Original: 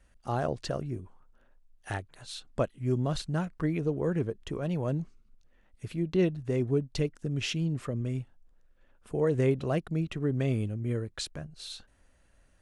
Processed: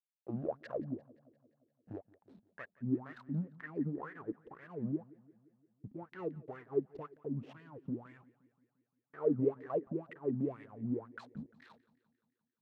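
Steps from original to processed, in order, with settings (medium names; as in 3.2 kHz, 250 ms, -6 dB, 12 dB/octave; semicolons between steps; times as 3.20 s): dynamic bell 110 Hz, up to +7 dB, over -43 dBFS, Q 0.79; in parallel at +1 dB: compression, threshold -35 dBFS, peak gain reduction 16.5 dB; on the sum: hysteresis with a dead band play -26 dBFS; wah-wah 2 Hz 200–1900 Hz, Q 11; modulated delay 174 ms, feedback 58%, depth 56 cents, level -22 dB; trim +4 dB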